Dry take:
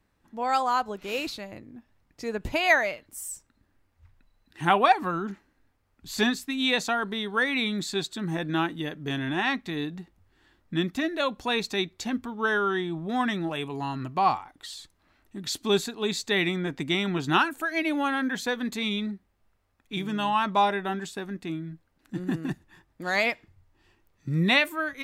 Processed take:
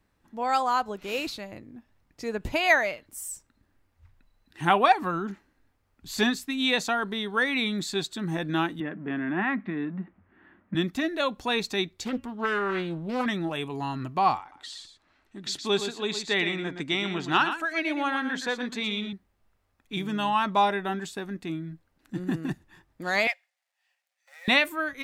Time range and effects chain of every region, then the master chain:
8.8–10.75 G.711 law mismatch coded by mu + speaker cabinet 130–2100 Hz, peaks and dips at 130 Hz -9 dB, 200 Hz +8 dB, 470 Hz -6 dB, 840 Hz -4 dB
11.91–13.26 bell 940 Hz -3.5 dB 2 oct + de-hum 276.3 Hz, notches 11 + Doppler distortion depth 0.47 ms
14.4–19.13 LPF 7300 Hz + low shelf 260 Hz -7.5 dB + echo 0.117 s -9 dB
23.27–24.48 G.711 law mismatch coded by A + rippled Chebyshev high-pass 520 Hz, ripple 9 dB + bell 6400 Hz +8.5 dB 2.3 oct
whole clip: dry

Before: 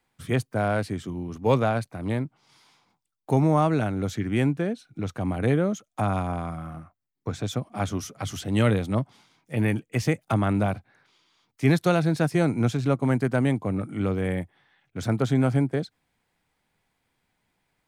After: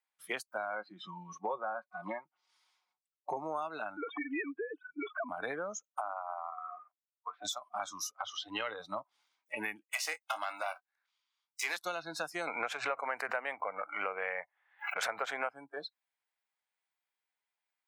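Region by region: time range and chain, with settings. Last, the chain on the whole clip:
0.73–3.37 treble ducked by the level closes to 1800 Hz, closed at -22 dBFS + comb 5.5 ms, depth 50%
3.97–5.29 sine-wave speech + comb 2.7 ms, depth 98%
6.01–7.45 BPF 350–2800 Hz + air absorption 360 m
8.11–8.8 LPF 3700 Hz + bell 180 Hz -14 dB 0.48 oct
9.92–11.77 HPF 640 Hz + sample leveller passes 2 + doubler 23 ms -11.5 dB
12.47–15.49 band shelf 1100 Hz +14.5 dB 2.9 oct + backwards sustainer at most 130 dB/s
whole clip: spectral noise reduction 24 dB; HPF 820 Hz 12 dB/oct; compressor 5:1, threshold -45 dBFS; gain +9 dB

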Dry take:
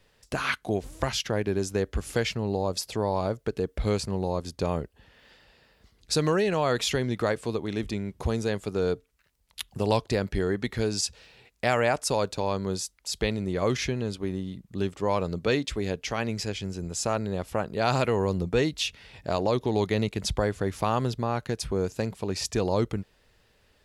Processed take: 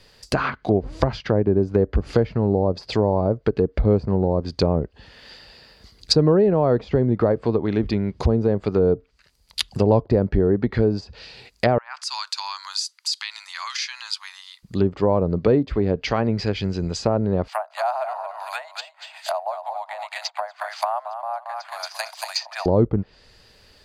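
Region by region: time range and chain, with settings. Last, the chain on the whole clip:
11.78–14.63 steep high-pass 950 Hz 48 dB/oct + compressor 4:1, threshold -37 dBFS
17.48–22.66 steep high-pass 640 Hz 96 dB/oct + feedback echo 0.227 s, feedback 24%, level -7.5 dB + careless resampling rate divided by 4×, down filtered, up zero stuff
whole clip: treble ducked by the level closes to 660 Hz, closed at -23.5 dBFS; bell 4800 Hz +12.5 dB 0.4 oct; notch 5300 Hz, Q 13; gain +9 dB

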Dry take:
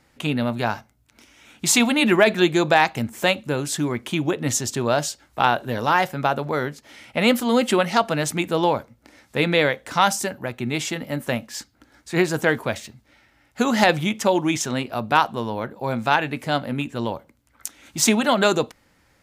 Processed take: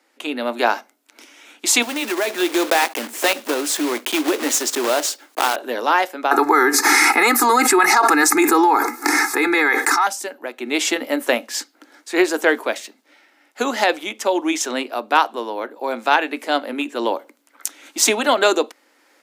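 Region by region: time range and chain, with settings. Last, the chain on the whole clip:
1.82–5.58 block floating point 3-bit + compressor 2:1, threshold -28 dBFS
6.31–10.07 fixed phaser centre 1300 Hz, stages 4 + comb 2.4 ms, depth 83% + fast leveller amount 100%
whole clip: de-esser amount 25%; steep high-pass 270 Hz 48 dB/oct; AGC gain up to 11.5 dB; gain -1 dB

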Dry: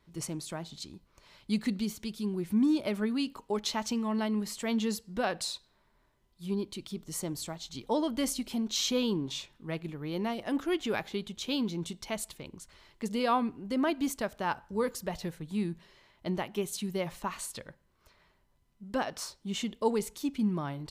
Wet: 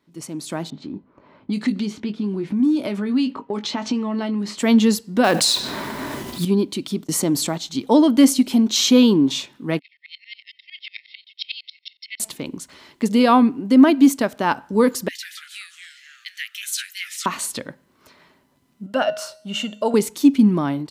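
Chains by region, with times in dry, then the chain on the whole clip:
0.7–4.58 doubler 20 ms -9 dB + low-pass opened by the level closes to 980 Hz, open at -24 dBFS + compressor 4:1, threshold -36 dBFS
5.24–6.45 block floating point 5-bit + fast leveller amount 70%
7.04–7.58 gate -46 dBFS, range -32 dB + fast leveller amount 50%
9.79–12.2 brick-wall FIR band-pass 1800–5600 Hz + comb 1.9 ms, depth 52% + dB-ramp tremolo swelling 11 Hz, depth 25 dB
15.08–17.26 steep high-pass 1700 Hz 96 dB/oct + echoes that change speed 0.145 s, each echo -3 st, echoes 2, each echo -6 dB
18.86–19.94 bell 320 Hz -12 dB 0.68 oct + resonator 210 Hz, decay 0.66 s, harmonics odd + small resonant body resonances 620/1400/2800 Hz, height 16 dB, ringing for 30 ms
whole clip: HPF 140 Hz 12 dB/oct; bell 270 Hz +9.5 dB 0.47 oct; AGC gain up to 12.5 dB

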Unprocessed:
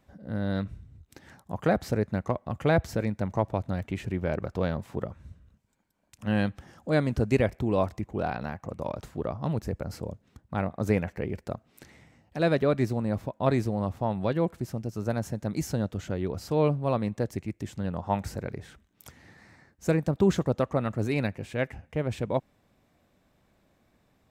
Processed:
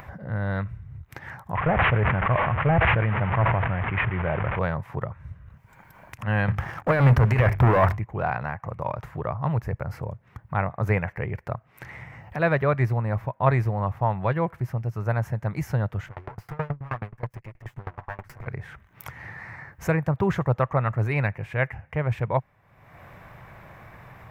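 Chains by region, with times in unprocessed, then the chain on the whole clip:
1.55–4.59 delta modulation 16 kbps, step -34 dBFS + sustainer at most 22 dB/s
6.48–7.98 negative-ratio compressor -26 dBFS, ratio -0.5 + sample leveller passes 3 + notches 50/100/150/200/250/300/350/400 Hz
16.06–18.47 minimum comb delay 8.2 ms + dB-ramp tremolo decaying 9.4 Hz, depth 30 dB
whole clip: graphic EQ 125/250/1000/2000/4000/8000 Hz +10/-10/+8/+9/-8/-10 dB; upward compressor, threshold -30 dBFS

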